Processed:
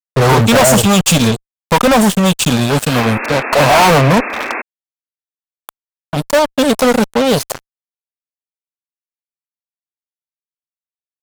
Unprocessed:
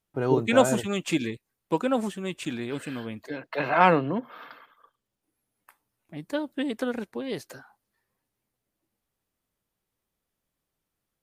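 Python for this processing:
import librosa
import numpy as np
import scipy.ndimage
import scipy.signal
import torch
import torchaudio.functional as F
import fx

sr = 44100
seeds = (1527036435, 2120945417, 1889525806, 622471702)

y = fx.fixed_phaser(x, sr, hz=820.0, stages=4)
y = fx.fuzz(y, sr, gain_db=42.0, gate_db=-44.0)
y = fx.spec_paint(y, sr, seeds[0], shape='noise', start_s=2.94, length_s=1.68, low_hz=210.0, high_hz=2700.0, level_db=-28.0)
y = y * librosa.db_to_amplitude(6.0)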